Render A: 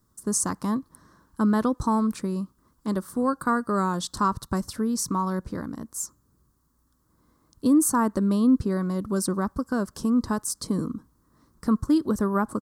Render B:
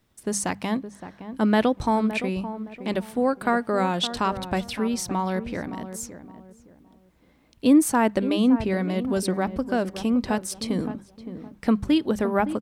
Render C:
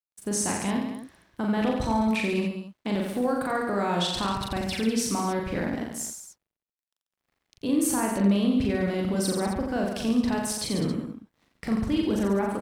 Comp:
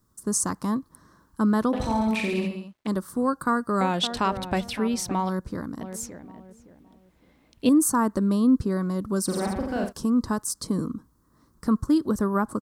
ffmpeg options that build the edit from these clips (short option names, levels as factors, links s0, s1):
-filter_complex "[2:a]asplit=2[s0][s1];[1:a]asplit=2[s2][s3];[0:a]asplit=5[s4][s5][s6][s7][s8];[s4]atrim=end=1.732[s9];[s0]atrim=start=1.728:end=2.872[s10];[s5]atrim=start=2.868:end=3.812[s11];[s2]atrim=start=3.808:end=5.292[s12];[s6]atrim=start=5.288:end=5.812[s13];[s3]atrim=start=5.808:end=7.692[s14];[s7]atrim=start=7.688:end=9.36[s15];[s1]atrim=start=9.26:end=9.93[s16];[s8]atrim=start=9.83[s17];[s9][s10]acrossfade=d=0.004:c1=hsin:c2=hsin[s18];[s18][s11]acrossfade=d=0.004:c1=hsin:c2=hsin[s19];[s19][s12]acrossfade=d=0.004:c1=hsin:c2=hsin[s20];[s20][s13]acrossfade=d=0.004:c1=hsin:c2=hsin[s21];[s21][s14]acrossfade=d=0.004:c1=hsin:c2=hsin[s22];[s22][s15]acrossfade=d=0.004:c1=hsin:c2=hsin[s23];[s23][s16]acrossfade=d=0.1:c1=tri:c2=tri[s24];[s24][s17]acrossfade=d=0.1:c1=tri:c2=tri"